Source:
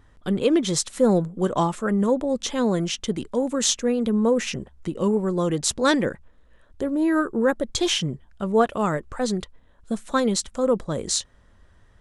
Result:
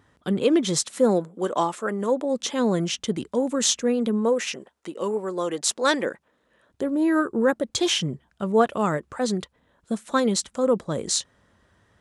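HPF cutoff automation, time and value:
0.82 s 120 Hz
1.27 s 320 Hz
2.12 s 320 Hz
2.83 s 95 Hz
3.91 s 95 Hz
4.39 s 400 Hz
5.91 s 400 Hz
6.93 s 110 Hz

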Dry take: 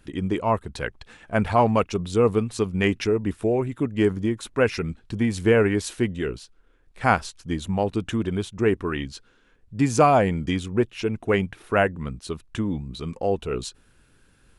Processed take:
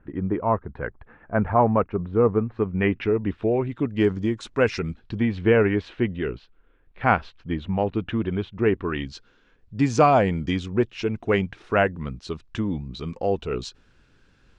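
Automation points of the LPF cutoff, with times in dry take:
LPF 24 dB/oct
2.48 s 1700 Hz
3.09 s 3000 Hz
4.33 s 6800 Hz
4.85 s 6800 Hz
5.35 s 3200 Hz
8.7 s 3200 Hz
9.12 s 6100 Hz

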